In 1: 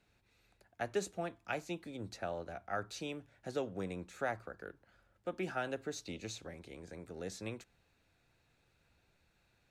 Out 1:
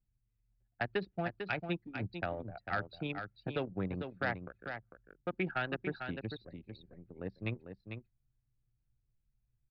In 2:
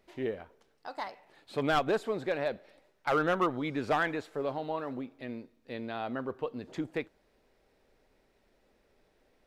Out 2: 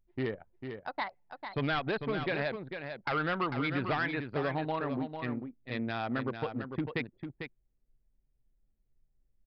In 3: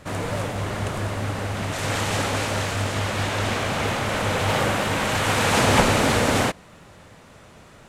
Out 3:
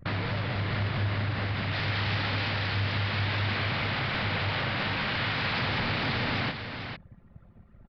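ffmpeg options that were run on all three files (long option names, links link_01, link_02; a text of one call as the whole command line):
ffmpeg -i in.wav -af "anlmdn=1,equalizer=frequency=125:width_type=o:width=1:gain=7,equalizer=frequency=500:width_type=o:width=1:gain=-4,equalizer=frequency=2000:width_type=o:width=1:gain=6,equalizer=frequency=4000:width_type=o:width=1:gain=5,acompressor=threshold=-33dB:ratio=4,aresample=16000,asoftclip=type=hard:threshold=-30dB,aresample=44100,aecho=1:1:448:0.422,aresample=11025,aresample=44100,volume=4.5dB" out.wav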